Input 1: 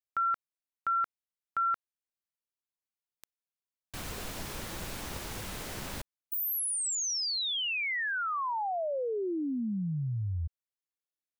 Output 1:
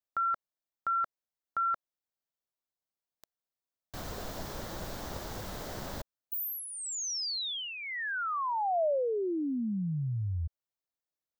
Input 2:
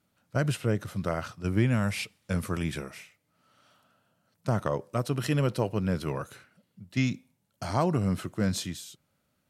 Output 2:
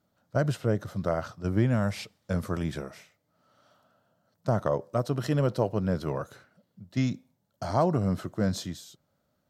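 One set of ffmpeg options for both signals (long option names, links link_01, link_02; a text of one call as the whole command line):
ffmpeg -i in.wav -af "equalizer=frequency=630:width_type=o:width=0.67:gain=5,equalizer=frequency=2500:width_type=o:width=0.67:gain=-9,equalizer=frequency=10000:width_type=o:width=0.67:gain=-10" out.wav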